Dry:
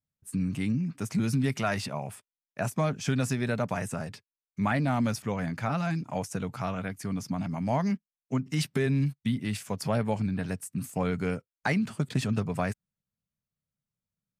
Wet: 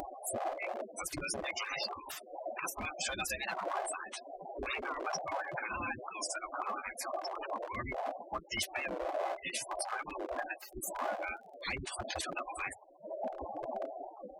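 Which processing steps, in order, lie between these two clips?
block floating point 5-bit; wind noise 190 Hz -28 dBFS; spectral gate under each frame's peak -25 dB strong; bell 1700 Hz -14.5 dB 2.4 oct; in parallel at -7 dB: hard clip -21.5 dBFS, distortion -8 dB; on the sum: spectral gate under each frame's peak -30 dB weak; upward compressor, threshold -23 dBFS; notch comb 460 Hz; 10.7–11.77 crackle 29/s -55 dBFS; record warp 45 rpm, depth 160 cents; gain +1.5 dB

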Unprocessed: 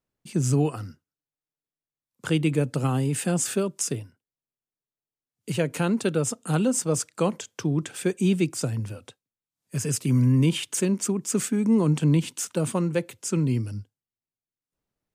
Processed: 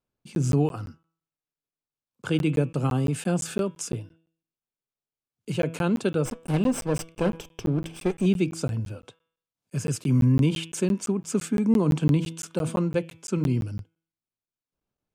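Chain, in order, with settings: 6.25–8.26 minimum comb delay 0.36 ms; high shelf 5900 Hz -10.5 dB; notch 1900 Hz, Q 6.9; de-hum 163.7 Hz, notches 22; crackling interface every 0.17 s, samples 512, zero, from 0.35

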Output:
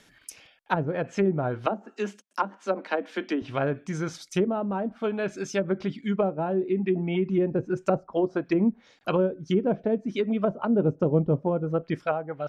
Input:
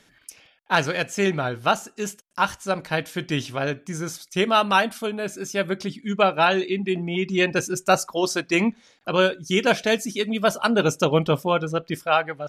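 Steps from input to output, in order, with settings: treble ducked by the level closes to 440 Hz, closed at -18 dBFS; 1.66–3.42 steep high-pass 200 Hz 96 dB/oct

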